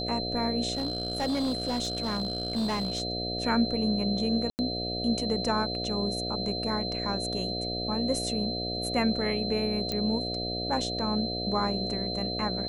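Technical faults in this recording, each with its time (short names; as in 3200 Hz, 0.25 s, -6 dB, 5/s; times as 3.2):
buzz 60 Hz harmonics 12 -35 dBFS
tone 4100 Hz -33 dBFS
0.73–3.02 clipped -25 dBFS
4.5–4.59 gap 89 ms
9.92 pop -16 dBFS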